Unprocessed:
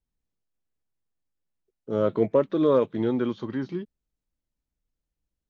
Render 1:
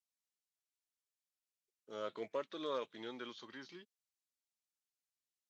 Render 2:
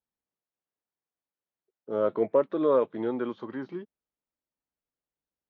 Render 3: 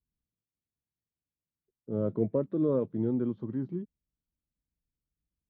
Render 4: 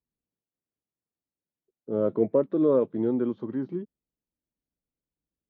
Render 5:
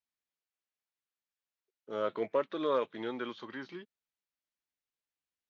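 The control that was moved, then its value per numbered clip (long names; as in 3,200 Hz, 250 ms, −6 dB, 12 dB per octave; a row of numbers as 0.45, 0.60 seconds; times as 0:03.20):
resonant band-pass, frequency: 6,800, 860, 120, 310, 2,400 Hertz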